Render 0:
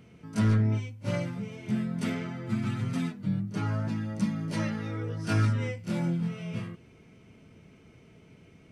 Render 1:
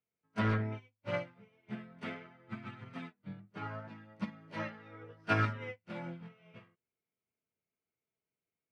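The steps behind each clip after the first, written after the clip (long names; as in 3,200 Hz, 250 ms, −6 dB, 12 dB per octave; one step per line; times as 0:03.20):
three-way crossover with the lows and the highs turned down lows −12 dB, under 430 Hz, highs −23 dB, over 3,500 Hz
expander for the loud parts 2.5 to 1, over −57 dBFS
level +5.5 dB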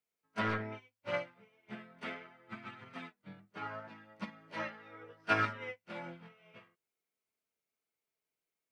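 parametric band 92 Hz −12 dB 3 octaves
level +2 dB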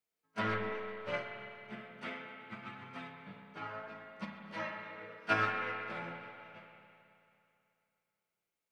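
delay with a high-pass on its return 128 ms, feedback 66%, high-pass 4,000 Hz, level −18 dB
spring reverb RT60 2.7 s, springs 30/54 ms, chirp 20 ms, DRR 2 dB
level −1 dB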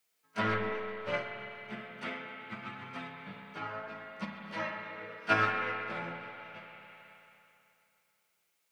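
one half of a high-frequency compander encoder only
level +3.5 dB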